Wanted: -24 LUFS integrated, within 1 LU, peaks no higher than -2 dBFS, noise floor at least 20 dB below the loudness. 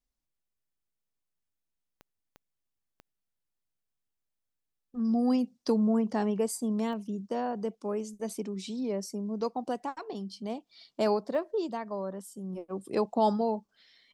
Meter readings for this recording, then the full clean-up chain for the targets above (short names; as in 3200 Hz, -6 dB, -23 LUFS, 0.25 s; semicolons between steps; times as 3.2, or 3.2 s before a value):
clicks 5; loudness -31.5 LUFS; peak -16.0 dBFS; loudness target -24.0 LUFS
-> de-click; gain +7.5 dB